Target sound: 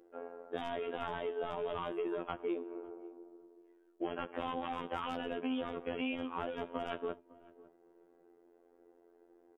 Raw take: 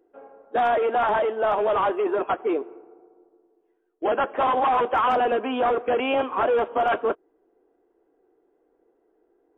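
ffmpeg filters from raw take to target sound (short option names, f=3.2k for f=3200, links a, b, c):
-filter_complex "[0:a]acrossover=split=280|3000[a][b][c];[b]acompressor=threshold=-35dB:ratio=6[d];[a][d][c]amix=inputs=3:normalize=0,afftfilt=real='hypot(re,im)*cos(PI*b)':imag='0':win_size=2048:overlap=0.75,acompressor=threshold=-40dB:ratio=2.5,asplit=2[e][f];[f]adelay=554,lowpass=f=860:p=1,volume=-19.5dB,asplit=2[g][h];[h]adelay=554,lowpass=f=860:p=1,volume=0.18[i];[g][i]amix=inputs=2:normalize=0[j];[e][j]amix=inputs=2:normalize=0,volume=4dB"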